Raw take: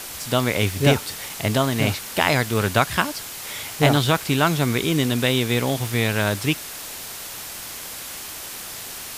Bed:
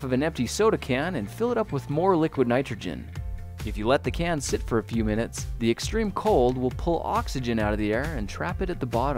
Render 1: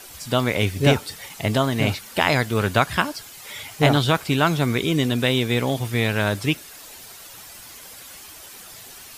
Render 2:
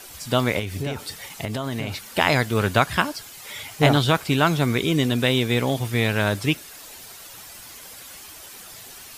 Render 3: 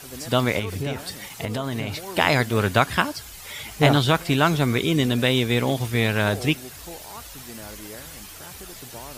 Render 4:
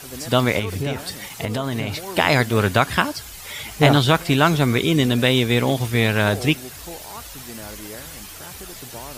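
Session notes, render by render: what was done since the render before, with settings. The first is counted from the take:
noise reduction 10 dB, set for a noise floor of -35 dBFS
0.59–2.03 s: compression 10:1, threshold -23 dBFS
add bed -15.5 dB
trim +3 dB; peak limiter -1 dBFS, peak gain reduction 2.5 dB

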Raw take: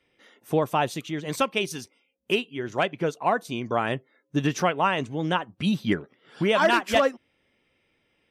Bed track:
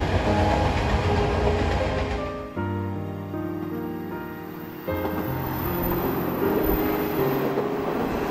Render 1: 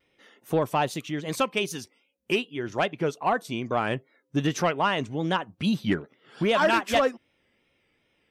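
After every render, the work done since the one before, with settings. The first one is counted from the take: saturation -12.5 dBFS, distortion -21 dB; vibrato 2.5 Hz 72 cents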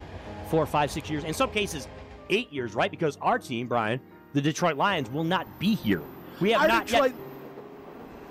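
add bed track -18 dB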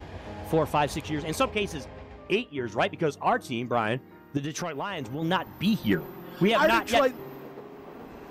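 1.50–2.64 s: treble shelf 4.7 kHz -10 dB; 4.37–5.22 s: compression, threshold -28 dBFS; 5.93–6.52 s: comb 5.5 ms, depth 53%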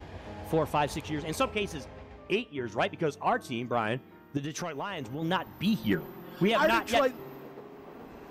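feedback comb 220 Hz, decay 1.5 s, mix 30%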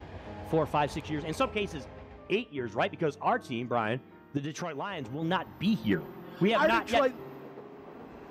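high-pass 43 Hz; treble shelf 6.6 kHz -10.5 dB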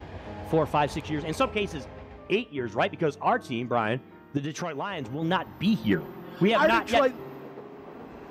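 trim +3.5 dB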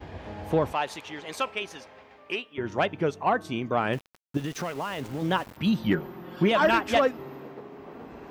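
0.73–2.58 s: high-pass 980 Hz 6 dB/octave; 3.93–5.57 s: small samples zeroed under -40 dBFS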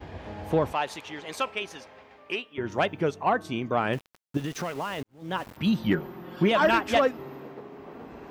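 2.70–3.11 s: treble shelf 9.8 kHz +10 dB; 5.03–5.45 s: fade in quadratic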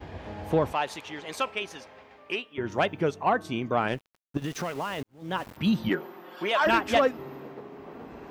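3.88–4.42 s: power-law waveshaper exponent 1.4; 5.88–6.65 s: high-pass 270 Hz -> 690 Hz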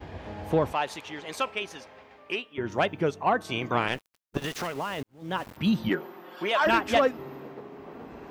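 3.40–4.66 s: spectral peaks clipped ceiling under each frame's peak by 14 dB

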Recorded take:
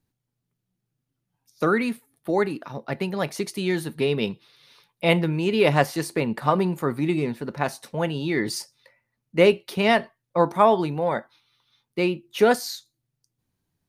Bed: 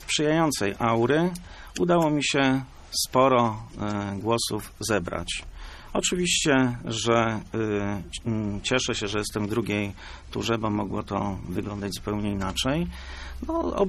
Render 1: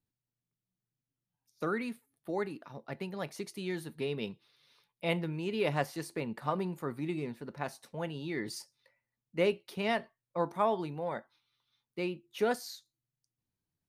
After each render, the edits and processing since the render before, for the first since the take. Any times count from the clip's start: trim -12 dB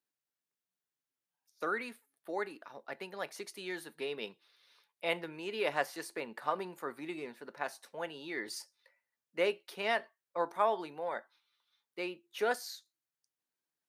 high-pass 430 Hz 12 dB/octave; peaking EQ 1.6 kHz +4 dB 0.45 oct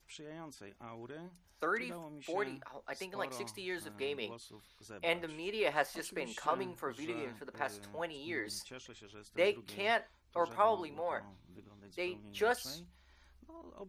add bed -26.5 dB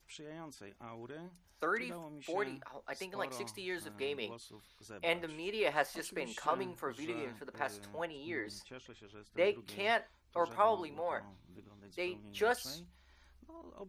8.05–9.59 s: treble shelf 4.7 kHz -11.5 dB

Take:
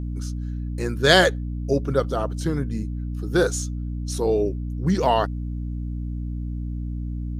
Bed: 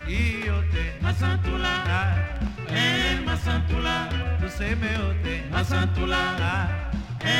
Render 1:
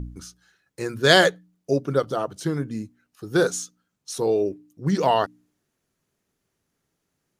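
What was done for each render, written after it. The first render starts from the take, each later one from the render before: de-hum 60 Hz, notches 5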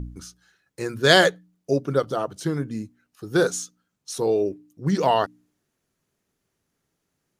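no audible change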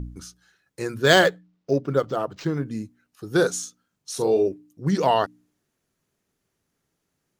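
1.03–2.66 s: decimation joined by straight lines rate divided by 4×; 3.59–4.48 s: doubling 41 ms -6.5 dB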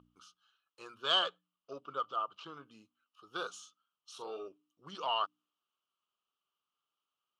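saturation -7.5 dBFS, distortion -21 dB; two resonant band-passes 1.9 kHz, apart 1.3 oct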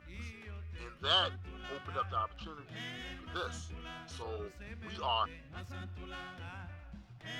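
add bed -22 dB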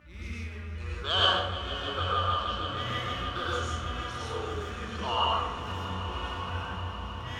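echo with a slow build-up 156 ms, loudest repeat 5, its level -15 dB; plate-style reverb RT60 0.86 s, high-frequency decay 0.6×, pre-delay 85 ms, DRR -6 dB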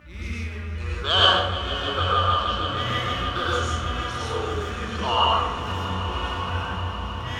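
trim +7 dB

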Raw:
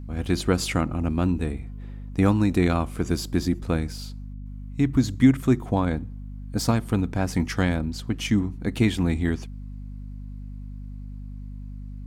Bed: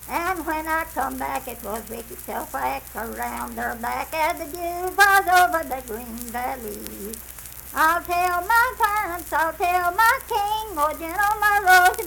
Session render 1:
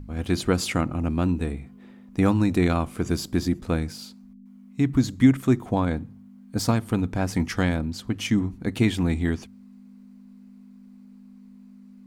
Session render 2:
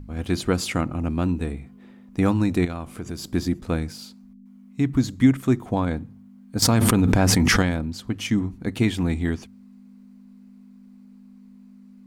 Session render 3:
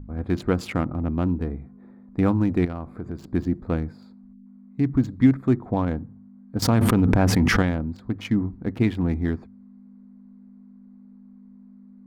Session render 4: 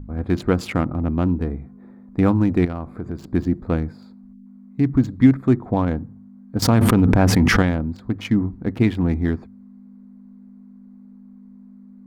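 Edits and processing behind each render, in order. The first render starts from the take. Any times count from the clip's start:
de-hum 50 Hz, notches 3
2.65–3.24 s: compression 2.5:1, threshold -31 dBFS; 6.62–7.62 s: level flattener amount 100%
local Wiener filter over 15 samples; peaking EQ 8.1 kHz -10 dB 1.9 oct
trim +3.5 dB; peak limiter -1 dBFS, peak gain reduction 1 dB

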